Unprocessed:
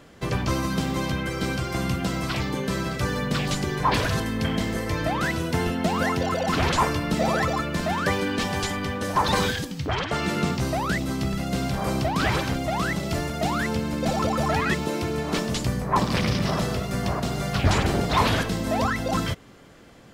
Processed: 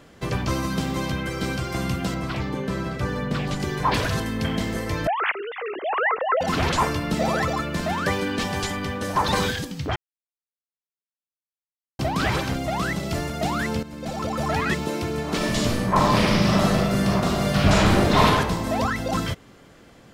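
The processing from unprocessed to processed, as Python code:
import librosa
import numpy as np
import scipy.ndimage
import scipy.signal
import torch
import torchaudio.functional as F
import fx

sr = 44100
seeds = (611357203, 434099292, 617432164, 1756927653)

y = fx.high_shelf(x, sr, hz=3200.0, db=-10.0, at=(2.14, 3.6))
y = fx.sine_speech(y, sr, at=(5.07, 6.41))
y = fx.reverb_throw(y, sr, start_s=15.36, length_s=2.88, rt60_s=1.2, drr_db=-3.5)
y = fx.edit(y, sr, fx.silence(start_s=9.96, length_s=2.03),
    fx.fade_in_from(start_s=13.83, length_s=0.77, floor_db=-13.0), tone=tone)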